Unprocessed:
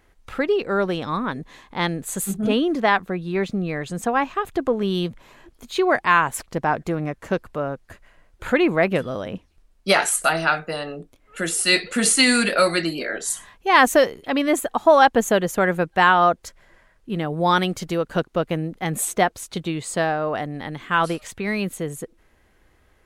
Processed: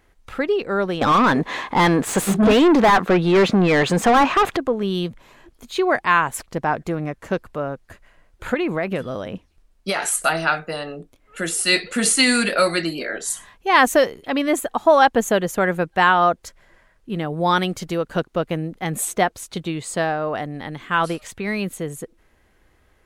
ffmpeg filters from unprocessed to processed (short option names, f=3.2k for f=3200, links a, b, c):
-filter_complex "[0:a]asettb=1/sr,asplit=3[a][b][c];[a]atrim=end=1.014[d];[b]atrim=start=1.01:end=4.57,asetpts=PTS-STARTPTS,afade=t=in:d=0.004:c=qsin,afade=t=out:st=3.556:d=0.004:c=qsin,asplit=2[e][f];[f]highpass=f=720:p=1,volume=30dB,asoftclip=type=tanh:threshold=-6dB[g];[e][g]amix=inputs=2:normalize=0,lowpass=f=1.6k:p=1,volume=-6dB[h];[c]atrim=start=4.566[i];[d][h]acrossfade=d=0.004:c1=hsin:c2=qsin[j];[j][i]acrossfade=d=0.004:c1=qsin:c2=hsin,asettb=1/sr,asplit=3[k][l][m];[k]atrim=end=8.544[n];[l]atrim=start=8.54:end=10.09,asetpts=PTS-STARTPTS,afade=t=in:d=0.004:c=qsin,afade=t=out:st=1.546:d=0.004:c=qsin,acompressor=threshold=-18dB:ratio=5:attack=3.2:release=140:knee=1:detection=peak[o];[m]atrim=start=10.086[p];[n][o]acrossfade=d=0.004:c1=hsin:c2=qsin[q];[q][p]acrossfade=d=0.004:c1=qsin:c2=hsin"